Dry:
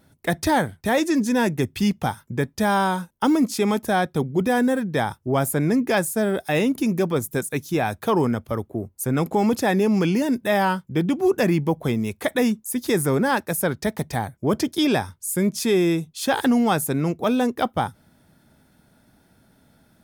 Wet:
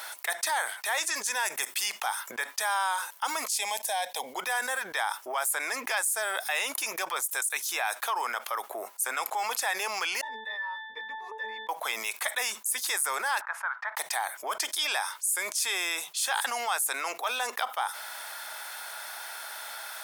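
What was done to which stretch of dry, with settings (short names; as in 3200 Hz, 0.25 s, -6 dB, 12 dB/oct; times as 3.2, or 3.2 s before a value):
1.45–1.86 high shelf 7900 Hz +7.5 dB
3.5–4.34 fixed phaser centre 350 Hz, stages 6
10.21–11.69 octave resonator A, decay 0.45 s
13.41–13.97 Butterworth band-pass 1200 Hz, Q 1.6
whole clip: HPF 860 Hz 24 dB/oct; dynamic EQ 8500 Hz, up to +7 dB, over -47 dBFS, Q 1.5; fast leveller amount 70%; gain -6 dB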